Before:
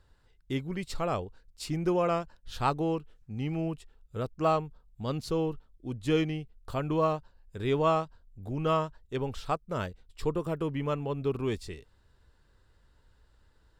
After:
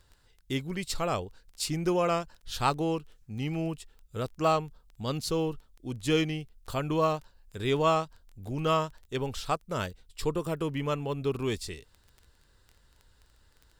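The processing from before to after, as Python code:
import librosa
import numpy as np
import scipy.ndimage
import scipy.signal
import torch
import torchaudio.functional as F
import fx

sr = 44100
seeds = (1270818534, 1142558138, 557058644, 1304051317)

y = fx.high_shelf(x, sr, hz=3000.0, db=10.5)
y = fx.dmg_crackle(y, sr, seeds[0], per_s=11.0, level_db=-40.0)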